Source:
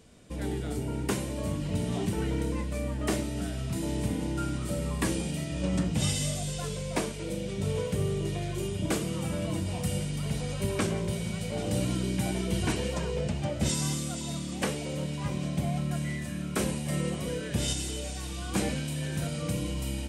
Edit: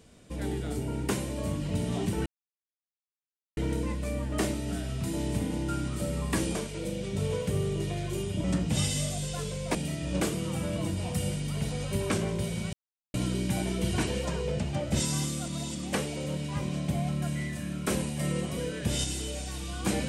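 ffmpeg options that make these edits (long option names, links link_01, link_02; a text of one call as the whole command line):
ffmpeg -i in.wav -filter_complex "[0:a]asplit=10[link_01][link_02][link_03][link_04][link_05][link_06][link_07][link_08][link_09][link_10];[link_01]atrim=end=2.26,asetpts=PTS-STARTPTS,afade=type=out:start_time=2.256:duration=0.004:curve=hsin,apad=pad_dur=1.31[link_11];[link_02]atrim=start=2.26:end=5.242,asetpts=PTS-STARTPTS,afade=type=in:duration=0.004:curve=hsin[link_12];[link_03]atrim=start=6.998:end=8.892[link_13];[link_04]atrim=start=5.688:end=7.002[link_14];[link_05]atrim=start=5.238:end=5.692[link_15];[link_06]atrim=start=8.888:end=11.42,asetpts=PTS-STARTPTS,afade=type=out:start_time=2.528:duration=0.004:curve=hsin[link_16];[link_07]atrim=start=11.42:end=11.83,asetpts=PTS-STARTPTS,volume=0[link_17];[link_08]atrim=start=11.83:end=14.172,asetpts=PTS-STARTPTS,afade=type=in:duration=0.004:curve=hsin[link_18];[link_09]atrim=start=14.168:end=14.442,asetpts=PTS-STARTPTS,areverse[link_19];[link_10]atrim=start=14.438[link_20];[link_11][link_12]concat=n=2:v=0:a=1[link_21];[link_21][link_13]acrossfade=duration=0.004:curve1=hsin:curve2=hsin[link_22];[link_22][link_14]acrossfade=duration=0.004:curve1=hsin:curve2=hsin[link_23];[link_23][link_15]acrossfade=duration=0.004:curve1=hsin:curve2=hsin[link_24];[link_16][link_17][link_18]concat=n=3:v=0:a=1[link_25];[link_24][link_25]acrossfade=duration=0.004:curve1=hsin:curve2=hsin[link_26];[link_26][link_19]acrossfade=duration=0.004:curve1=hsin:curve2=hsin[link_27];[link_27][link_20]acrossfade=duration=0.004:curve1=hsin:curve2=hsin" out.wav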